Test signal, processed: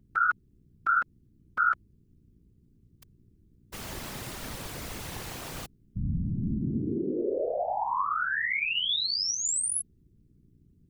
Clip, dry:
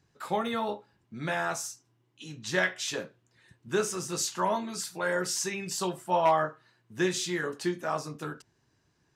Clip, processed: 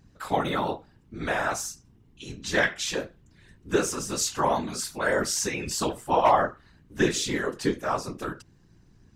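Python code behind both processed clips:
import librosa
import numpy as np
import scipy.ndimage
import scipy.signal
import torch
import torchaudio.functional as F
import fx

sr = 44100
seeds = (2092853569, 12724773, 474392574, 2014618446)

y = fx.add_hum(x, sr, base_hz=60, snr_db=28)
y = fx.whisperise(y, sr, seeds[0])
y = y * librosa.db_to_amplitude(3.5)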